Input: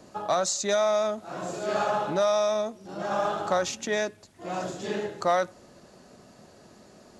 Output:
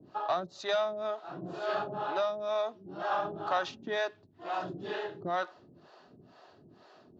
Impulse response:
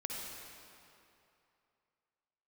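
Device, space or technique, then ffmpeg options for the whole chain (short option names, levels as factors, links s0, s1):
guitar amplifier with harmonic tremolo: -filter_complex "[0:a]acrossover=split=430[s0][s1];[s0]aeval=exprs='val(0)*(1-1/2+1/2*cos(2*PI*2.1*n/s))':c=same[s2];[s1]aeval=exprs='val(0)*(1-1/2-1/2*cos(2*PI*2.1*n/s))':c=same[s3];[s2][s3]amix=inputs=2:normalize=0,asoftclip=type=tanh:threshold=0.0794,highpass=110,equalizer=f=210:t=q:w=4:g=-9,equalizer=f=530:t=q:w=4:g=-8,equalizer=f=2200:t=q:w=4:g=-9,lowpass=f=4000:w=0.5412,lowpass=f=4000:w=1.3066,volume=1.41"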